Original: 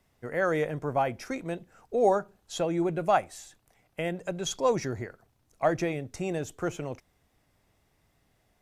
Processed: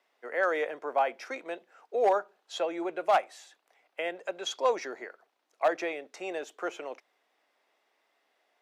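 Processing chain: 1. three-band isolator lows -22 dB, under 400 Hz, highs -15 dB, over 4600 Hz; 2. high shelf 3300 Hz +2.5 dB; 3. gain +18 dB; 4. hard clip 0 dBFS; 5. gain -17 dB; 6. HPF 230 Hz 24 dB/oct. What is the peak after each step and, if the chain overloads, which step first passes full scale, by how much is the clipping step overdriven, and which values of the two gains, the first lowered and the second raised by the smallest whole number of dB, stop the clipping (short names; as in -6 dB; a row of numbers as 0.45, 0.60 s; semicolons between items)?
-11.5, -11.5, +6.5, 0.0, -17.0, -13.0 dBFS; step 3, 6.5 dB; step 3 +11 dB, step 5 -10 dB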